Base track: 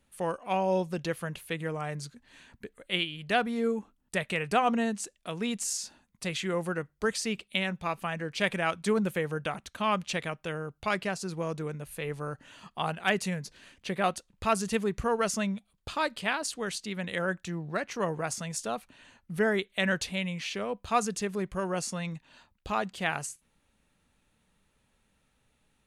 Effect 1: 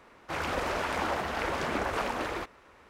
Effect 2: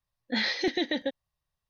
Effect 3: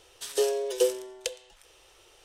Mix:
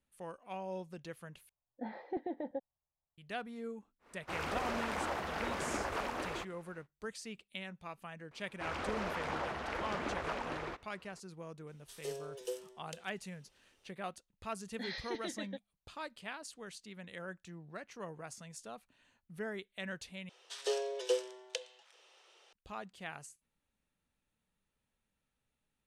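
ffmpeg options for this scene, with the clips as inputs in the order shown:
-filter_complex "[2:a]asplit=2[s0][s1];[1:a]asplit=2[s2][s3];[3:a]asplit=2[s4][s5];[0:a]volume=0.188[s6];[s0]lowpass=f=810:t=q:w=2.4[s7];[s3]adynamicsmooth=sensitivity=5:basefreq=7000[s8];[s5]highpass=510,lowpass=5500[s9];[s6]asplit=3[s10][s11][s12];[s10]atrim=end=1.494[s13];[s7]atrim=end=1.69,asetpts=PTS-STARTPTS,volume=0.251[s14];[s11]atrim=start=3.176:end=20.294[s15];[s9]atrim=end=2.24,asetpts=PTS-STARTPTS,volume=0.596[s16];[s12]atrim=start=22.526[s17];[s2]atrim=end=2.89,asetpts=PTS-STARTPTS,volume=0.473,afade=t=in:d=0.1,afade=t=out:st=2.79:d=0.1,adelay=3990[s18];[s8]atrim=end=2.89,asetpts=PTS-STARTPTS,volume=0.422,afade=t=in:d=0.004:c=hsin,afade=t=out:st=2.886:d=0.004:c=hsin,adelay=8310[s19];[s4]atrim=end=2.24,asetpts=PTS-STARTPTS,volume=0.15,afade=t=in:d=0.004:c=hsin,afade=t=out:st=2.236:d=0.004:c=hsin,adelay=11670[s20];[s1]atrim=end=1.69,asetpts=PTS-STARTPTS,volume=0.188,afade=t=in:d=0.004:c=hsin,afade=t=out:st=1.686:d=0.004:c=hsin,adelay=14470[s21];[s13][s14]acrossfade=d=0.004:c1=hsin:c2=hsin[s22];[s22][s15]acrossfade=d=0.004:c1=hsin:c2=hsin[s23];[s23][s16]acrossfade=d=0.004:c1=hsin:c2=hsin[s24];[s24][s17]acrossfade=d=0.004:c1=hsin:c2=hsin[s25];[s25][s18][s19][s20][s21]amix=inputs=5:normalize=0"

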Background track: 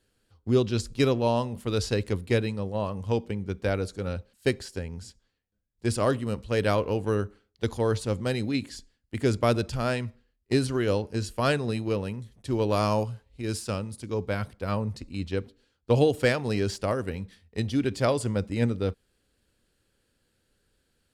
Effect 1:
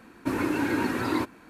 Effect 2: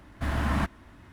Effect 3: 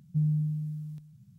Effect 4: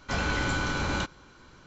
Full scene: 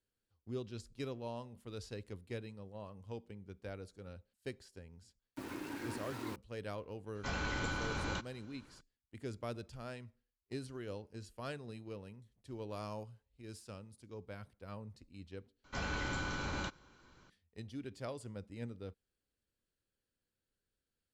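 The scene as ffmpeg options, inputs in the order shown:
-filter_complex "[4:a]asplit=2[s0][s1];[0:a]volume=0.112[s2];[1:a]aeval=exprs='val(0)*gte(abs(val(0)),0.0316)':c=same[s3];[s2]asplit=2[s4][s5];[s4]atrim=end=15.644[s6];[s1]atrim=end=1.66,asetpts=PTS-STARTPTS,volume=0.316[s7];[s5]atrim=start=17.296[s8];[s3]atrim=end=1.49,asetpts=PTS-STARTPTS,volume=0.141,afade=t=in:d=0.004:c=hsin,afade=t=out:st=1.486:d=0.004:c=hsin,adelay=5110[s9];[s0]atrim=end=1.66,asetpts=PTS-STARTPTS,volume=0.335,afade=t=in:d=0.004:c=hsin,afade=t=out:st=1.656:d=0.004:c=hsin,adelay=7150[s10];[s6][s7]acrossfade=d=0.004:c1=hsin:c2=hsin[s11];[s11][s8]acrossfade=d=0.004:c1=hsin:c2=hsin[s12];[s12][s9][s10]amix=inputs=3:normalize=0"

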